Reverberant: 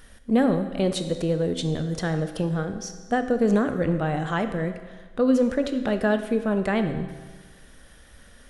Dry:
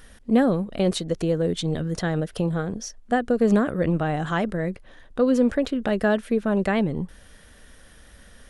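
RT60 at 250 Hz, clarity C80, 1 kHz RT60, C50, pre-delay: 1.4 s, 11.0 dB, 1.4 s, 9.5 dB, 21 ms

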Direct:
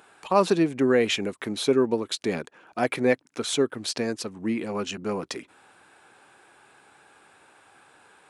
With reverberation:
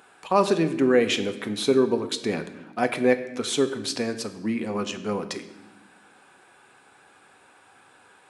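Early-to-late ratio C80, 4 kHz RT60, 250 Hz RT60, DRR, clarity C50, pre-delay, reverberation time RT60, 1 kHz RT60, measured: 14.0 dB, 0.90 s, 1.7 s, 7.5 dB, 12.5 dB, 4 ms, 1.0 s, 0.90 s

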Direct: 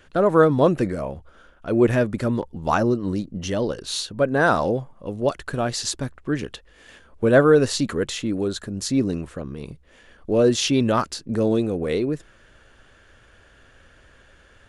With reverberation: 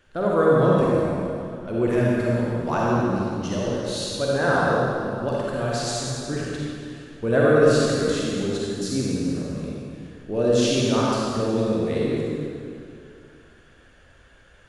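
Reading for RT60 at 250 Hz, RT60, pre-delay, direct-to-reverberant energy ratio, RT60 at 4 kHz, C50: 2.6 s, 2.4 s, 40 ms, -5.5 dB, 2.1 s, -4.5 dB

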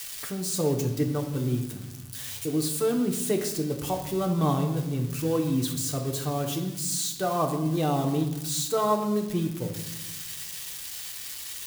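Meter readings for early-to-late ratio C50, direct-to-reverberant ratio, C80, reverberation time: 8.5 dB, 2.0 dB, 11.0 dB, 1.0 s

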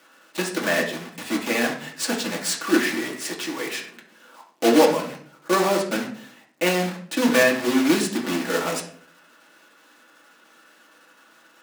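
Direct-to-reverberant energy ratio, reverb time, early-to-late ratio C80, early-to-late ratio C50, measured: -1.5 dB, 0.55 s, 12.0 dB, 8.0 dB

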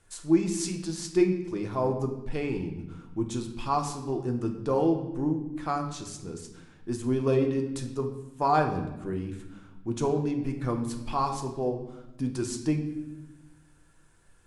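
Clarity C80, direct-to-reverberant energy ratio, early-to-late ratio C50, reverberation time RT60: 10.0 dB, 3.0 dB, 8.0 dB, 1.0 s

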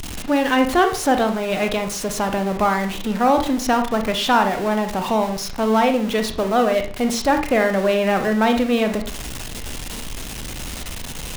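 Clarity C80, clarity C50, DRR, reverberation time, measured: 14.5 dB, 9.0 dB, 6.0 dB, 0.40 s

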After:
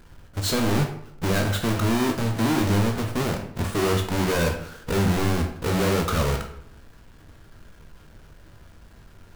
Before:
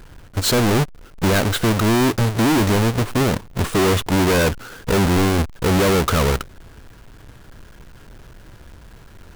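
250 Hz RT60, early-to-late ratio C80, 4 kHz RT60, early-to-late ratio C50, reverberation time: 0.75 s, 10.5 dB, 0.50 s, 8.0 dB, 0.70 s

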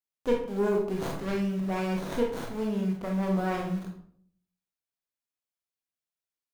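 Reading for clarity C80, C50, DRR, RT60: 9.5 dB, 5.0 dB, -0.5 dB, 0.60 s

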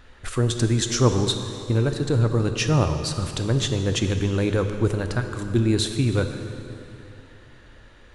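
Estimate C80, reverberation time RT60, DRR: 8.0 dB, 2.9 s, 6.5 dB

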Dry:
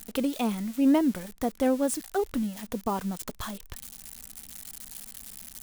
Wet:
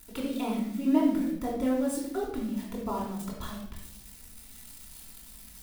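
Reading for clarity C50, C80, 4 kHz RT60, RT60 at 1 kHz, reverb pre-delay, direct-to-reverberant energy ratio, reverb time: 2.5 dB, 6.0 dB, 0.55 s, 0.60 s, 3 ms, -5.5 dB, 0.75 s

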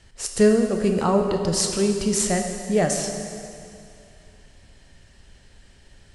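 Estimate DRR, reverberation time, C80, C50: 4.0 dB, 2.5 s, 6.0 dB, 5.0 dB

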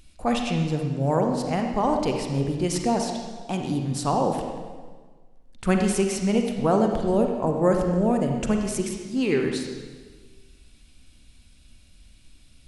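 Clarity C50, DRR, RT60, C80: 3.5 dB, 2.5 dB, 1.5 s, 5.5 dB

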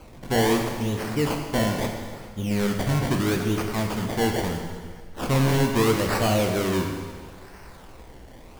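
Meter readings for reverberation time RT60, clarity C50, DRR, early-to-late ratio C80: 1.7 s, 4.0 dB, 2.0 dB, 5.5 dB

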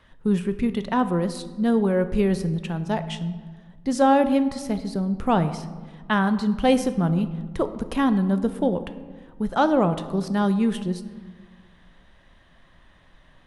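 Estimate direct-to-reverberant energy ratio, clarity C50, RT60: 10.5 dB, 13.0 dB, 1.5 s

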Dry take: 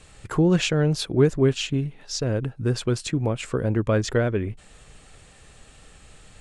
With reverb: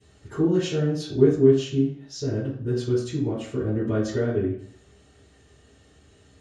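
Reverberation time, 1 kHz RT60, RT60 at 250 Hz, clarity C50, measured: 0.55 s, 0.55 s, 0.60 s, 3.5 dB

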